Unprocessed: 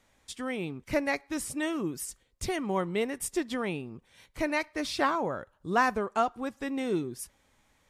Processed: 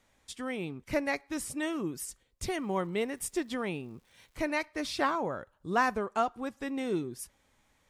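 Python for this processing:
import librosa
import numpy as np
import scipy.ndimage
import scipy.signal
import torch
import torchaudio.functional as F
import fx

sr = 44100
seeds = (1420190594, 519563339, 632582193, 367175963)

y = fx.dmg_crackle(x, sr, seeds[0], per_s=330.0, level_db=-55.0, at=(2.53, 4.41), fade=0.02)
y = y * 10.0 ** (-2.0 / 20.0)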